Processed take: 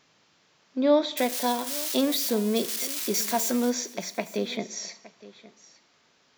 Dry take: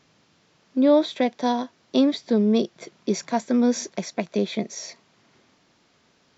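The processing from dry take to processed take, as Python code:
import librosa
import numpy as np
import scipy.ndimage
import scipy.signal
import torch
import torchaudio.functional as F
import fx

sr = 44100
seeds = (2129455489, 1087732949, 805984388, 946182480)

y = fx.crossing_spikes(x, sr, level_db=-21.5, at=(1.17, 3.7))
y = fx.low_shelf(y, sr, hz=410.0, db=-9.5)
y = y + 10.0 ** (-19.0 / 20.0) * np.pad(y, (int(866 * sr / 1000.0), 0))[:len(y)]
y = fx.rev_plate(y, sr, seeds[0], rt60_s=0.81, hf_ratio=0.9, predelay_ms=0, drr_db=13.5)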